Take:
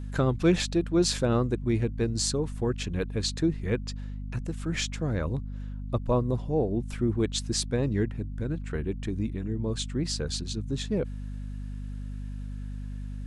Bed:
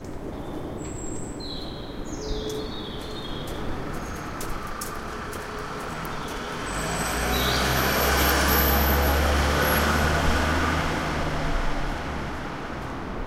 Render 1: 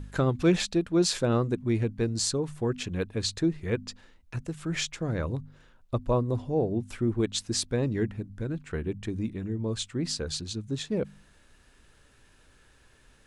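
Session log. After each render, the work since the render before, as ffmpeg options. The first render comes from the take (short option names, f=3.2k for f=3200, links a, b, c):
-af "bandreject=f=50:t=h:w=4,bandreject=f=100:t=h:w=4,bandreject=f=150:t=h:w=4,bandreject=f=200:t=h:w=4,bandreject=f=250:t=h:w=4"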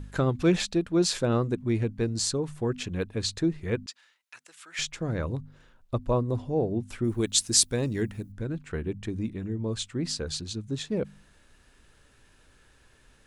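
-filter_complex "[0:a]asettb=1/sr,asplit=3[a][b][c];[a]atrim=end=3.864[d];[b]atrim=start=3.86:end=4.79,asetpts=PTS-STARTPTS,afade=t=in:d=0.004:c=qsin,afade=t=out:st=0.926:d=0.004:c=qsin,highpass=1.4k[e];[c]atrim=start=4.786[f];[d][e]acrossfade=d=0.004:c1=hsin:c2=qsin[g];[g][f]acrossfade=d=0.004:c1=qsin:c2=hsin,asettb=1/sr,asplit=3[h][i][j];[h]atrim=end=7.044[k];[i]atrim=start=7.04:end=8.32,asetpts=PTS-STARTPTS,afade=t=in:d=0.004:c=qsin,afade=t=out:st=1.276:d=0.004:c=qsin,aemphasis=mode=production:type=75fm[l];[j]atrim=start=8.316[m];[k][l]acrossfade=d=0.004:c1=hsin:c2=qsin[n];[n][m]acrossfade=d=0.004:c1=qsin:c2=hsin"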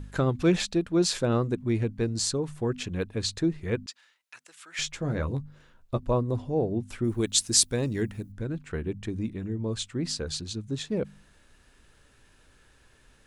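-filter_complex "[0:a]asettb=1/sr,asplit=3[a][b][c];[a]atrim=end=4.834[d];[b]atrim=start=4.83:end=6.03,asetpts=PTS-STARTPTS,afade=t=in:d=0.004:c=qsin,afade=t=out:st=1.196:d=0.004:c=qsin,asplit=2[e][f];[f]adelay=14,volume=-7dB[g];[e][g]amix=inputs=2:normalize=0,atrim=end_sample=52920[h];[c]atrim=start=6.026[i];[d][h]acrossfade=d=0.004:c1=hsin:c2=qsin[j];[j][i]acrossfade=d=0.004:c1=qsin:c2=hsin"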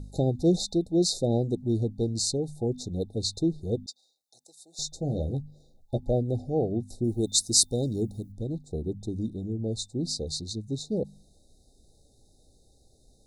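-af "afftfilt=real='re*(1-between(b*sr/4096,830,3600))':imag='im*(1-between(b*sr/4096,830,3600))':win_size=4096:overlap=0.75,adynamicequalizer=threshold=0.00224:dfrequency=3000:dqfactor=3.4:tfrequency=3000:tqfactor=3.4:attack=5:release=100:ratio=0.375:range=2.5:mode=boostabove:tftype=bell"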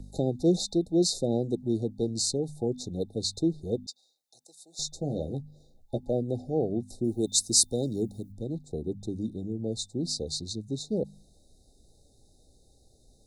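-filter_complex "[0:a]acrossover=split=150|570|3900[a][b][c][d];[a]acompressor=threshold=-42dB:ratio=6[e];[c]alimiter=level_in=6.5dB:limit=-24dB:level=0:latency=1:release=168,volume=-6.5dB[f];[e][b][f][d]amix=inputs=4:normalize=0"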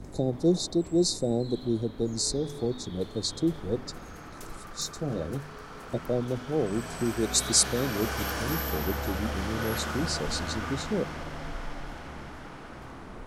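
-filter_complex "[1:a]volume=-11dB[a];[0:a][a]amix=inputs=2:normalize=0"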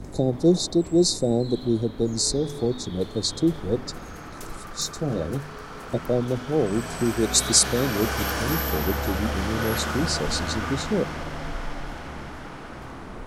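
-af "volume=5dB,alimiter=limit=-3dB:level=0:latency=1"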